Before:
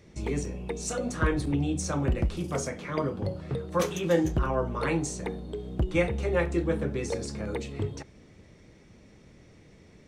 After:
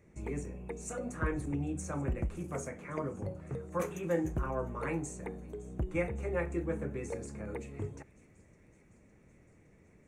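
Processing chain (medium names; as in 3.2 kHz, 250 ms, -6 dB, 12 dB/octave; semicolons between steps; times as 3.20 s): high-order bell 4.1 kHz -13.5 dB 1.1 oct; feedback echo behind a high-pass 560 ms, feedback 69%, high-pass 3.4 kHz, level -19 dB; trim -7.5 dB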